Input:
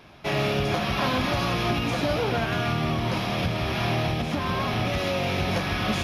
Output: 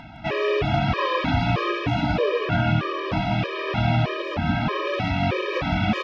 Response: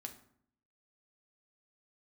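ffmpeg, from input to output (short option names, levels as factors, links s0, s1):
-af "lowpass=3000,acompressor=mode=upward:threshold=0.0126:ratio=2.5,aecho=1:1:161:0.531,afftfilt=real='re*gt(sin(2*PI*1.6*pts/sr)*(1-2*mod(floor(b*sr/1024/320),2)),0)':imag='im*gt(sin(2*PI*1.6*pts/sr)*(1-2*mod(floor(b*sr/1024/320),2)),0)':win_size=1024:overlap=0.75,volume=1.78"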